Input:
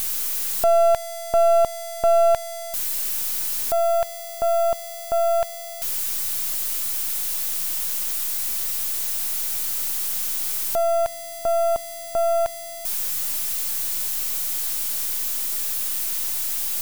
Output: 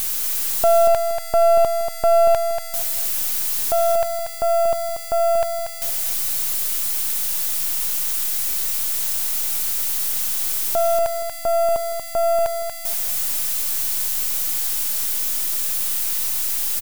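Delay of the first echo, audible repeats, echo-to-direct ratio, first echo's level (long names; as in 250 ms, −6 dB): 236 ms, 3, −6.5 dB, −7.0 dB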